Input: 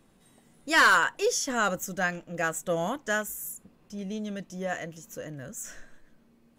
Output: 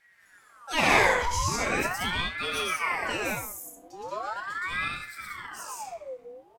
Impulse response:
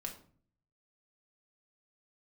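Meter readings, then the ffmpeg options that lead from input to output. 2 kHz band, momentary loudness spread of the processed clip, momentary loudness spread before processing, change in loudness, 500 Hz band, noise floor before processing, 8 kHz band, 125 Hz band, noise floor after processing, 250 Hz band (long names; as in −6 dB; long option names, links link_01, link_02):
−1.0 dB, 18 LU, 20 LU, −0.5 dB, −1.0 dB, −62 dBFS, −1.5 dB, +2.0 dB, −59 dBFS, −2.5 dB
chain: -filter_complex "[0:a]aecho=1:1:116.6|180.8:1|0.794,aeval=exprs='0.531*(cos(1*acos(clip(val(0)/0.531,-1,1)))-cos(1*PI/2))+0.00596*(cos(6*acos(clip(val(0)/0.531,-1,1)))-cos(6*PI/2))':channel_layout=same,acrossover=split=220|5300[link_01][link_02][link_03];[link_01]asoftclip=type=hard:threshold=-39dB[link_04];[link_04][link_02][link_03]amix=inputs=3:normalize=0[link_05];[1:a]atrim=start_sample=2205[link_06];[link_05][link_06]afir=irnorm=-1:irlink=0,aeval=exprs='val(0)*sin(2*PI*1200*n/s+1200*0.6/0.4*sin(2*PI*0.4*n/s))':channel_layout=same"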